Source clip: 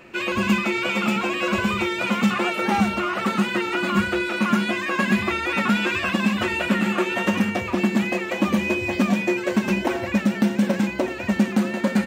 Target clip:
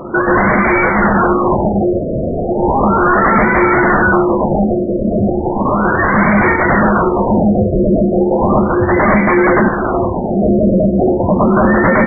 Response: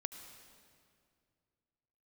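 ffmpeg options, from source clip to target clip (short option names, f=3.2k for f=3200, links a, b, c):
-filter_complex "[0:a]asettb=1/sr,asplit=3[a][b][c];[a]atrim=end=0.524[d];[b]atrim=start=0.52:end=1.2,asetpts=PTS-STARTPTS,afade=t=in:d=0.004:c=qsin,afade=t=out:st=0.676:d=0.004:c=qsin,highpass=f=150:w=0.5412,highpass=f=150:w=1.3066[e];[c]atrim=start=1.196[f];[d][e]acrossfade=d=0.004:c1=hsin:c2=qsin[g];[g][f]acrossfade=d=0.004:c1=qsin:c2=hsin,asettb=1/sr,asplit=3[h][i][j];[h]atrim=end=1.934[k];[i]atrim=start=1.93:end=2.49,asetpts=PTS-STARTPTS,afade=t=in:d=0.004:c=qsin,afade=t=out:st=0.556:d=0.004:c=qsin,acontrast=43[l];[j]atrim=start=2.486[m];[k][l]acrossfade=d=0.004:c1=hsin:c2=qsin[n];[n][m]acrossfade=d=0.004:c1=qsin:c2=hsin,asettb=1/sr,asplit=3[o][p][q];[o]atrim=end=9.684[r];[p]atrim=start=9.68:end=10.37,asetpts=PTS-STARTPTS,afade=t=in:d=0.004:c=qsin,afade=t=out:st=0.686:d=0.004:c=qsin,highshelf=f=2.6k:t=q:w=3:g=14[s];[q]atrim=start=10.366[t];[r][s]acrossfade=d=0.004:c1=hsin:c2=qsin[u];[u][t]acrossfade=d=0.004:c1=qsin:c2=hsin,aeval=exprs='0.596*sin(PI/2*8.91*val(0)/0.596)':c=same,asplit=2[v][w];[1:a]atrim=start_sample=2205,lowpass=2.6k[x];[w][x]afir=irnorm=-1:irlink=0,volume=3dB[y];[v][y]amix=inputs=2:normalize=0,afftfilt=real='re*lt(b*sr/1024,680*pow(2400/680,0.5+0.5*sin(2*PI*0.35*pts/sr)))':imag='im*lt(b*sr/1024,680*pow(2400/680,0.5+0.5*sin(2*PI*0.35*pts/sr)))':win_size=1024:overlap=0.75,volume=-7.5dB"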